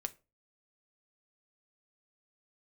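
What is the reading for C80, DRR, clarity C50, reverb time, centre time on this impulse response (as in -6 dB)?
27.5 dB, 8.5 dB, 20.5 dB, 0.30 s, 3 ms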